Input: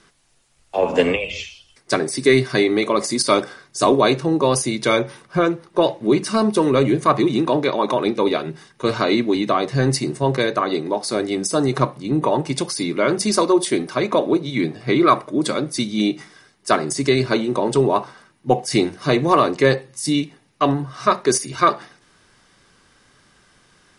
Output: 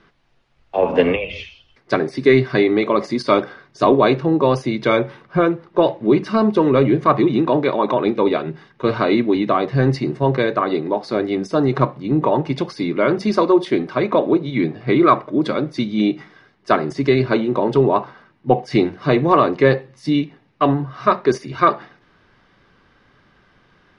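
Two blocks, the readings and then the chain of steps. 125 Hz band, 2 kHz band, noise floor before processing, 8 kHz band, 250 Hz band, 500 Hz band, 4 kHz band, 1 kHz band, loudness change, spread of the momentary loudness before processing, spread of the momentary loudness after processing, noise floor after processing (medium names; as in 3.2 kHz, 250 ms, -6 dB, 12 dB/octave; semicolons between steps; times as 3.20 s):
+2.5 dB, 0.0 dB, -58 dBFS, under -15 dB, +2.0 dB, +2.0 dB, -5.5 dB, +1.0 dB, +1.5 dB, 7 LU, 7 LU, -57 dBFS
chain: distance through air 280 m; trim +2.5 dB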